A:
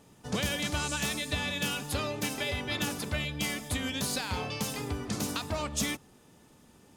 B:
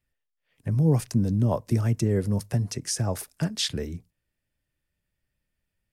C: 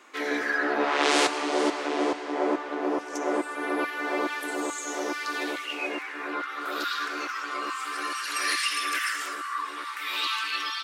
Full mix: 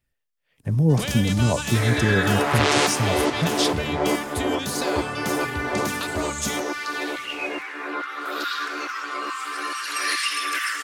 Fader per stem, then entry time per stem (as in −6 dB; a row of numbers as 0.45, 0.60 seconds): +3.0, +2.5, +2.5 decibels; 0.65, 0.00, 1.60 seconds